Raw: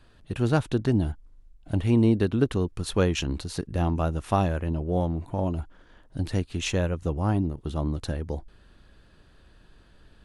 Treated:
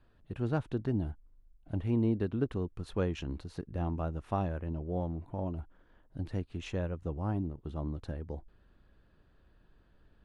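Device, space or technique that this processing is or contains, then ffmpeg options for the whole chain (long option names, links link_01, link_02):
through cloth: -af "highshelf=frequency=3600:gain=-15.5,volume=-8.5dB"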